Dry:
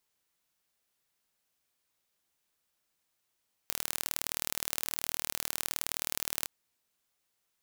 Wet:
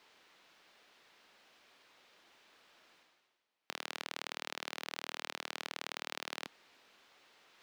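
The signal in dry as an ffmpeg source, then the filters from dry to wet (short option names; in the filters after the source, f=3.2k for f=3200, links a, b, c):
-f lavfi -i "aevalsrc='0.668*eq(mod(n,1137),0)*(0.5+0.5*eq(mod(n,2274),0))':d=2.78:s=44100"
-filter_complex "[0:a]acrossover=split=220 4500:gain=0.158 1 0.0631[a][b][c];[a][b][c]amix=inputs=3:normalize=0,areverse,acompressor=mode=upward:threshold=-47dB:ratio=2.5,areverse"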